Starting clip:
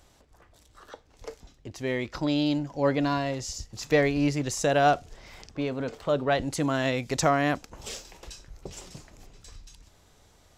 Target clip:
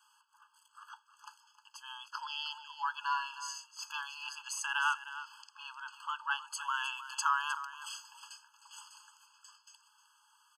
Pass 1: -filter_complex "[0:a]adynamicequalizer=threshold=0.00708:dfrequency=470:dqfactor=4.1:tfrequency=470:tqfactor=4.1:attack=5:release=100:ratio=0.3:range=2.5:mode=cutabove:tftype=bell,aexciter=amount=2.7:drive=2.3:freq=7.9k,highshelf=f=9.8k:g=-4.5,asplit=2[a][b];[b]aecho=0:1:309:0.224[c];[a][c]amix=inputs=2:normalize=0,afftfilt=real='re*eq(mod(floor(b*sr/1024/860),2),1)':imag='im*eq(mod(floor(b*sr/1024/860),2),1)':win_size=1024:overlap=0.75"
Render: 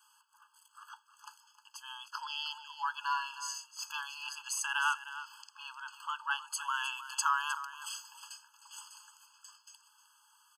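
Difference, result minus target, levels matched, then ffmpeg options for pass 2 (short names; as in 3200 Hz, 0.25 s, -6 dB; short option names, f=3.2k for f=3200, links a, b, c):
8000 Hz band +3.0 dB
-filter_complex "[0:a]adynamicequalizer=threshold=0.00708:dfrequency=470:dqfactor=4.1:tfrequency=470:tqfactor=4.1:attack=5:release=100:ratio=0.3:range=2.5:mode=cutabove:tftype=bell,aexciter=amount=2.7:drive=2.3:freq=7.9k,highshelf=f=9.8k:g=-16,asplit=2[a][b];[b]aecho=0:1:309:0.224[c];[a][c]amix=inputs=2:normalize=0,afftfilt=real='re*eq(mod(floor(b*sr/1024/860),2),1)':imag='im*eq(mod(floor(b*sr/1024/860),2),1)':win_size=1024:overlap=0.75"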